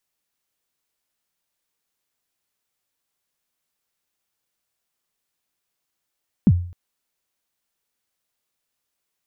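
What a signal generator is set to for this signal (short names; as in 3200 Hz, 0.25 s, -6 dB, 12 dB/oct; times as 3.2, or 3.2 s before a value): kick drum length 0.26 s, from 250 Hz, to 88 Hz, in 48 ms, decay 0.49 s, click off, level -7 dB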